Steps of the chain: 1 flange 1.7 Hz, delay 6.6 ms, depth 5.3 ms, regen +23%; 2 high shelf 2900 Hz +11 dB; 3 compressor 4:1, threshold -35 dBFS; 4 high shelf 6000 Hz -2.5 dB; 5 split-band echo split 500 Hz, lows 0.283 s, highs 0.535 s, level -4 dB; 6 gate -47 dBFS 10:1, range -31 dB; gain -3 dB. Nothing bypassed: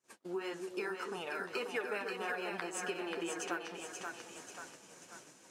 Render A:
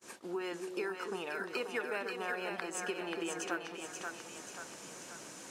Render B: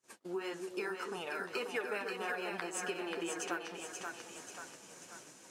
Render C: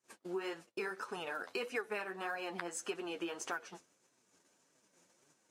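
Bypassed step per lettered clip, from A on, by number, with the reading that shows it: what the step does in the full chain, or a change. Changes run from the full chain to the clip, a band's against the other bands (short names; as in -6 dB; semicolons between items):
1, momentary loudness spread change -4 LU; 4, 8 kHz band +1.5 dB; 5, momentary loudness spread change -9 LU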